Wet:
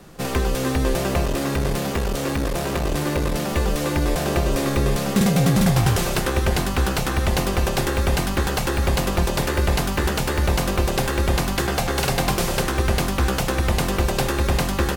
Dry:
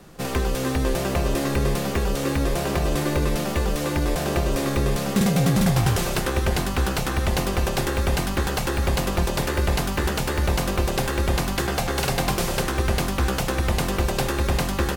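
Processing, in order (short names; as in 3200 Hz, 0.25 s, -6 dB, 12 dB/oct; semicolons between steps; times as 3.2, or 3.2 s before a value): 1.25–3.52 one-sided clip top -27 dBFS; gain +2 dB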